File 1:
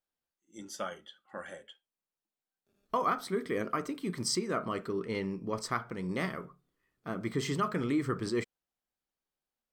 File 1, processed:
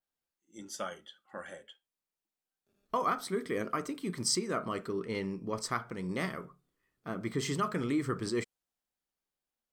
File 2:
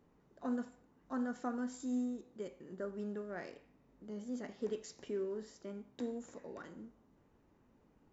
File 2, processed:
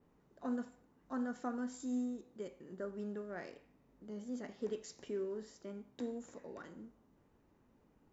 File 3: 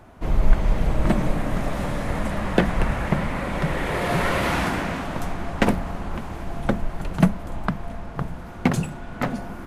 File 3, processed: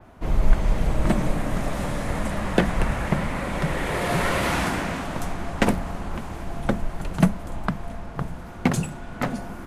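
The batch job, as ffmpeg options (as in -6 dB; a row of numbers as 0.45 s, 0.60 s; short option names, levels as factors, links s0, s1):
-af "adynamicequalizer=threshold=0.00251:dfrequency=8500:dqfactor=0.72:tfrequency=8500:tqfactor=0.72:attack=5:release=100:ratio=0.375:range=2.5:mode=boostabove:tftype=bell,volume=0.891"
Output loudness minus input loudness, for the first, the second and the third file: -0.5 LU, -1.0 LU, -1.0 LU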